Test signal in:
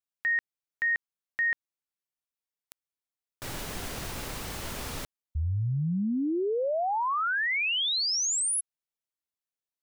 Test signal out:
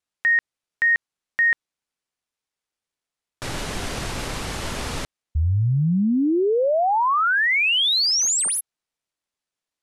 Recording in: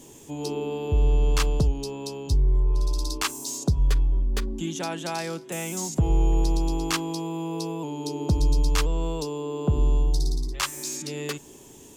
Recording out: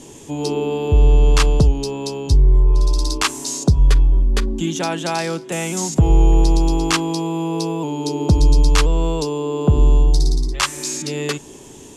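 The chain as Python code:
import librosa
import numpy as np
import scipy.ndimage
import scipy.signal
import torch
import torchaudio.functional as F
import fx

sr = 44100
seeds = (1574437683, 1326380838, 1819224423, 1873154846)

y = scipy.signal.medfilt(x, 3)
y = scipy.signal.sosfilt(scipy.signal.butter(6, 12000.0, 'lowpass', fs=sr, output='sos'), y)
y = y * 10.0 ** (8.5 / 20.0)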